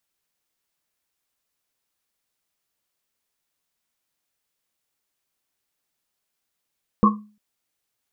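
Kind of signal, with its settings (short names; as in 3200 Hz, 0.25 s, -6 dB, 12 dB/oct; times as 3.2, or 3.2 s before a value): Risset drum length 0.35 s, pitch 210 Hz, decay 0.39 s, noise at 1100 Hz, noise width 140 Hz, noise 50%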